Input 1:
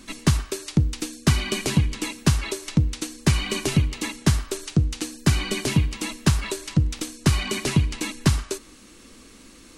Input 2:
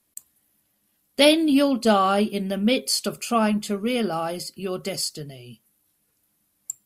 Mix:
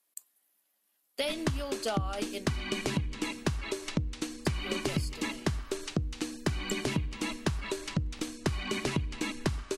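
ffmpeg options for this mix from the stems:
ffmpeg -i stem1.wav -i stem2.wav -filter_complex "[0:a]highshelf=frequency=5500:gain=-10,adelay=1200,volume=-0.5dB[link_01];[1:a]highpass=490,acompressor=threshold=-20dB:ratio=6,volume=-5.5dB,asplit=3[link_02][link_03][link_04];[link_02]atrim=end=2.46,asetpts=PTS-STARTPTS,afade=type=out:start_time=2.456:duration=0.004:curve=hsin[link_05];[link_03]atrim=start=2.46:end=4.45,asetpts=PTS-STARTPTS,volume=0[link_06];[link_04]atrim=start=4.45,asetpts=PTS-STARTPTS,afade=type=in:duration=0.004:curve=hsin[link_07];[link_05][link_06][link_07]concat=n=3:v=0:a=1[link_08];[link_01][link_08]amix=inputs=2:normalize=0,acompressor=threshold=-27dB:ratio=12" out.wav

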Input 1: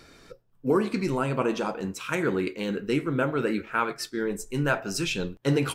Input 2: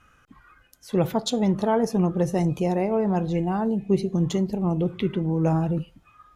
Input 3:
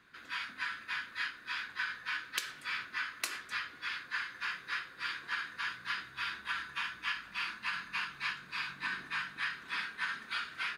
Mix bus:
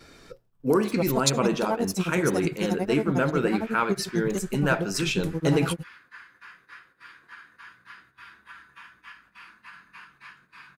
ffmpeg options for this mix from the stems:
ffmpeg -i stem1.wav -i stem2.wav -i stem3.wav -filter_complex "[0:a]acontrast=36,volume=-4dB[link_01];[1:a]aexciter=amount=4.8:drive=3.8:freq=4100,tremolo=f=11:d=0.99,aeval=exprs='sgn(val(0))*max(abs(val(0))-0.00531,0)':channel_layout=same,volume=-2dB[link_02];[2:a]equalizer=frequency=3900:width_type=o:width=1.6:gain=-10.5,adelay=2000,volume=-6dB[link_03];[link_01][link_02][link_03]amix=inputs=3:normalize=0,agate=range=-7dB:threshold=-58dB:ratio=16:detection=peak" out.wav

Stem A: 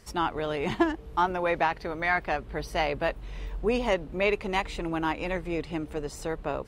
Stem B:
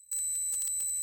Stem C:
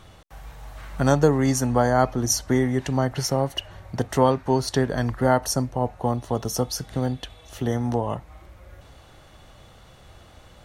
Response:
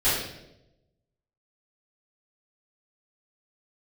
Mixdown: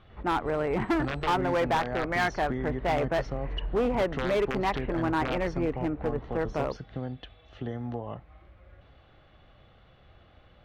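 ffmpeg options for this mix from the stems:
-filter_complex "[0:a]lowpass=frequency=2000:width=0.5412,lowpass=frequency=2000:width=1.3066,adelay=100,volume=2.5dB[link_01];[1:a]adelay=350,volume=-10.5dB[link_02];[2:a]aeval=exprs='(mod(2.82*val(0)+1,2)-1)/2.82':channel_layout=same,acompressor=threshold=-23dB:ratio=2.5,bandreject=frequency=940:width=8.2,volume=-7.5dB[link_03];[link_01][link_02][link_03]amix=inputs=3:normalize=0,lowpass=frequency=3500:width=0.5412,lowpass=frequency=3500:width=1.3066,asoftclip=type=hard:threshold=-21.5dB"

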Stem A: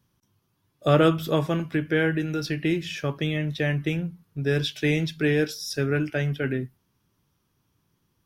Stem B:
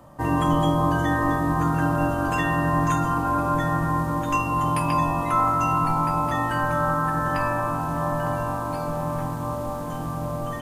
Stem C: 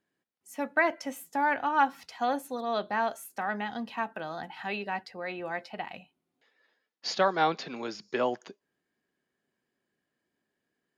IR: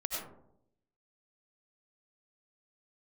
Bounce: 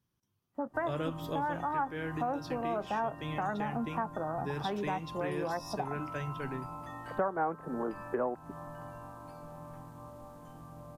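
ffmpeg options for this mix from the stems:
-filter_complex "[0:a]volume=-11.5dB[link_01];[1:a]adelay=550,volume=-20dB[link_02];[2:a]afwtdn=0.0126,lowpass=frequency=1400:width=0.5412,lowpass=frequency=1400:width=1.3066,dynaudnorm=framelen=490:gausssize=11:maxgain=6.5dB,volume=0dB[link_03];[link_01][link_02][link_03]amix=inputs=3:normalize=0,acompressor=threshold=-32dB:ratio=3"

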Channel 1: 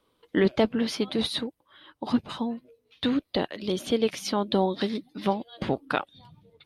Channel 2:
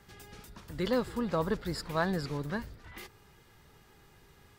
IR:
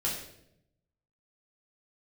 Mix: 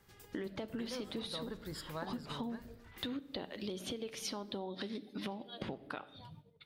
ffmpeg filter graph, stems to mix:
-filter_complex "[0:a]agate=range=-13dB:threshold=-54dB:ratio=16:detection=peak,alimiter=limit=-21.5dB:level=0:latency=1:release=244,volume=-2dB,asplit=2[link_01][link_02];[link_02]volume=-18dB[link_03];[1:a]highshelf=frequency=9900:gain=7,volume=-9dB,asplit=2[link_04][link_05];[link_05]volume=-18.5dB[link_06];[2:a]atrim=start_sample=2205[link_07];[link_03][link_06]amix=inputs=2:normalize=0[link_08];[link_08][link_07]afir=irnorm=-1:irlink=0[link_09];[link_01][link_04][link_09]amix=inputs=3:normalize=0,acompressor=threshold=-38dB:ratio=6"

